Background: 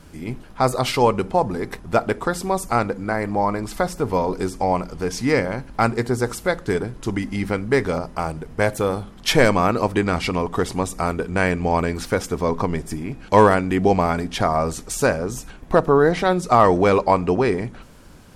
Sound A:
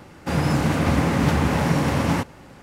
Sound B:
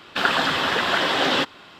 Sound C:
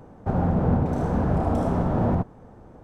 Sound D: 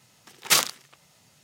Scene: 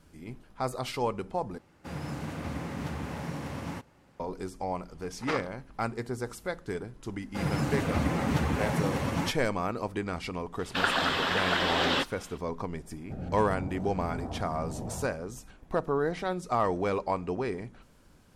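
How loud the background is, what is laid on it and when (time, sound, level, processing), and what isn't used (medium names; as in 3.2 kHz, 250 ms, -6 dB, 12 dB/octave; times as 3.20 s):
background -13 dB
1.58 s: replace with A -16 dB
4.77 s: add D -3.5 dB + low-pass 1.3 kHz
7.08 s: add A -6 dB + expander on every frequency bin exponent 1.5
10.59 s: add B -6.5 dB
12.84 s: add C -14 dB + step-sequenced notch 3.9 Hz 270–2700 Hz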